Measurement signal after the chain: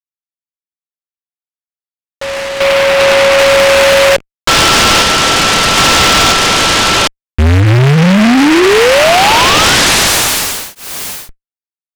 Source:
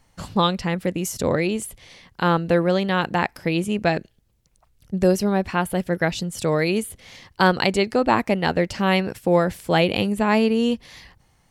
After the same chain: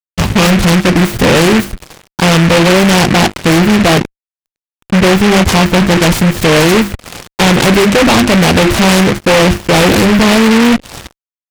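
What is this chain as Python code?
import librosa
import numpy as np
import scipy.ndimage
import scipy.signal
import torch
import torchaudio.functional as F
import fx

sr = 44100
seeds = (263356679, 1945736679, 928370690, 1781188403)

y = fx.low_shelf(x, sr, hz=120.0, db=4.5)
y = fx.hum_notches(y, sr, base_hz=50, count=7)
y = fx.fuzz(y, sr, gain_db=34.0, gate_db=-42.0)
y = np.convolve(y, np.full(8, 1.0 / 8))[:len(y)]
y = fx.noise_mod_delay(y, sr, seeds[0], noise_hz=1700.0, depth_ms=0.17)
y = y * 10.0 ** (7.5 / 20.0)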